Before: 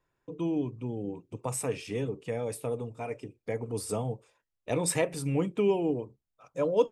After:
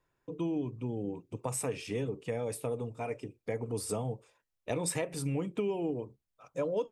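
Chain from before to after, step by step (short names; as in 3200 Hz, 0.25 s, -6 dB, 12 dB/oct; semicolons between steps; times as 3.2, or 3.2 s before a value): compressor 6:1, threshold -29 dBFS, peak gain reduction 11 dB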